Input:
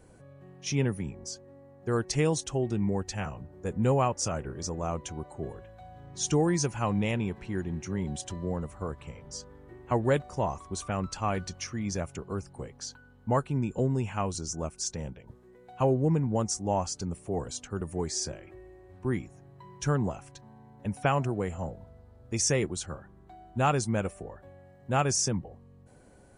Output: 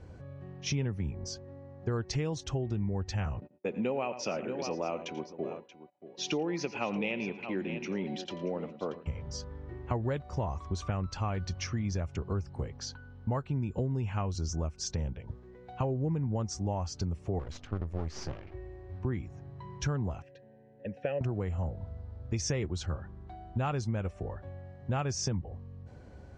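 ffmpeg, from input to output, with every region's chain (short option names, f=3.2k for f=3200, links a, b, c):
-filter_complex "[0:a]asettb=1/sr,asplit=3[a][b][c];[a]atrim=end=3.404[d];[b]atrim=start=3.4:end=9.06,asetpts=PTS-STARTPTS,afade=t=in:d=0.004:c=qsin,afade=t=out:st=5.656:d=0.004:c=qsin,agate=range=-36dB:threshold=-44dB:ratio=16:release=100:detection=peak,highpass=f=220:w=0.5412,highpass=f=220:w=1.3066,equalizer=f=570:t=q:w=4:g=3,equalizer=f=1.1k:t=q:w=4:g=-4,equalizer=f=1.6k:t=q:w=4:g=-5,equalizer=f=2.5k:t=q:w=4:g=10,lowpass=f=5.4k:w=0.5412,lowpass=f=5.4k:w=1.3066,aecho=1:1:87|111|631:0.133|0.126|0.178,atrim=end_sample=249606[e];[c]atrim=start=9.056[f];[d][e]acrossfade=d=0.004:c1=hsin:c2=qsin[g];[g][f]acrossfade=d=0.004:c1=qsin:c2=hsin,asettb=1/sr,asplit=3[h][i][j];[h]atrim=end=17.394[k];[i]atrim=start=17.39:end=18.54,asetpts=PTS-STARTPTS,afade=t=in:d=0.004:c=qsin,afade=t=out:st=1.146:d=0.004:c=qsin,aemphasis=mode=reproduction:type=cd,aeval=exprs='max(val(0),0)':c=same[l];[j]atrim=start=18.536[m];[k][l]acrossfade=d=0.004:c1=hsin:c2=qsin[n];[n][m]acrossfade=d=0.004:c1=qsin:c2=hsin,asettb=1/sr,asplit=3[o][p][q];[o]atrim=end=20.224[r];[p]atrim=start=20.22:end=21.21,asetpts=PTS-STARTPTS,afade=t=in:d=0.004:c=qsin,afade=t=out:st=0.986:d=0.004:c=qsin,equalizer=f=170:t=o:w=2:g=8,acontrast=34,asplit=3[s][t][u];[s]bandpass=f=530:t=q:w=8,volume=0dB[v];[t]bandpass=f=1.84k:t=q:w=8,volume=-6dB[w];[u]bandpass=f=2.48k:t=q:w=8,volume=-9dB[x];[v][w][x]amix=inputs=3:normalize=0[y];[q]atrim=start=21.206[z];[r][y]acrossfade=d=0.004:c1=hsin:c2=qsin[aa];[aa][z]acrossfade=d=0.004:c1=qsin:c2=hsin,lowpass=f=5.6k:w=0.5412,lowpass=f=5.6k:w=1.3066,equalizer=f=76:w=1.1:g=11.5,acompressor=threshold=-31dB:ratio=6,volume=2dB"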